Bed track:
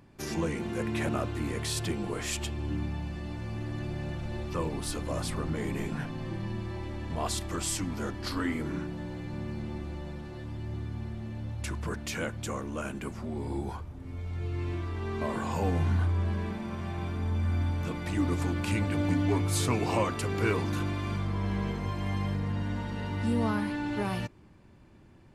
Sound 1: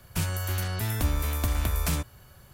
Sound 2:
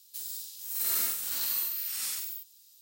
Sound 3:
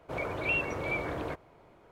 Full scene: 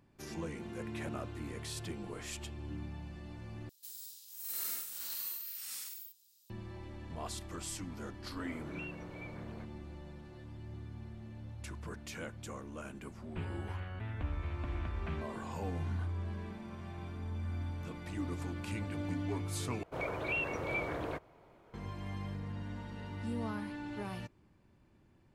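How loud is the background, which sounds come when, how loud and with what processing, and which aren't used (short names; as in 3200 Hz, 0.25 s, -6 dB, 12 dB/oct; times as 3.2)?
bed track -10 dB
3.69 replace with 2 -9.5 dB
8.3 add 3 -17 dB
13.2 add 1 -12 dB + inverse Chebyshev low-pass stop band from 5500 Hz
19.83 replace with 3 -3 dB + limiter -22.5 dBFS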